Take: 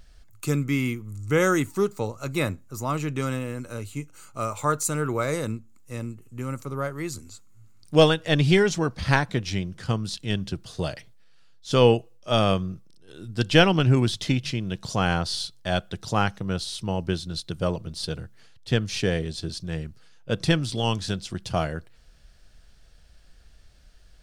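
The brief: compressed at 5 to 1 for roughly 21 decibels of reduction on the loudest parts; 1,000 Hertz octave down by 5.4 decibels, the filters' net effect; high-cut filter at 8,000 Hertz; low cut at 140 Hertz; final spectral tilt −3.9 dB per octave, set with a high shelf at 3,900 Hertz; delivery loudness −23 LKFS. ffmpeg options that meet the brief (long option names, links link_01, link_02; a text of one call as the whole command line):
ffmpeg -i in.wav -af "highpass=140,lowpass=8000,equalizer=frequency=1000:width_type=o:gain=-8.5,highshelf=frequency=3900:gain=8,acompressor=threshold=-37dB:ratio=5,volume=17dB" out.wav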